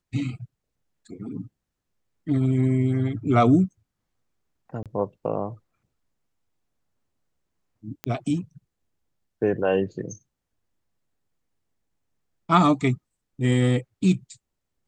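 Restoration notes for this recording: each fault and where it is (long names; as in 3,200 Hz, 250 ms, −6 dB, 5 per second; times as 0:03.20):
0:04.83–0:04.86: drop-out 27 ms
0:08.04: click −14 dBFS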